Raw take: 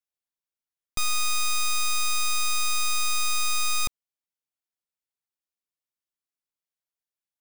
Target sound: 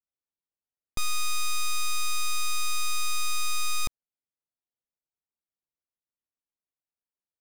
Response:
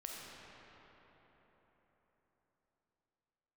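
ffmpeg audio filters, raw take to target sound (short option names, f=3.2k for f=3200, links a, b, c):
-af "adynamicsmooth=sensitivity=5:basefreq=1.1k"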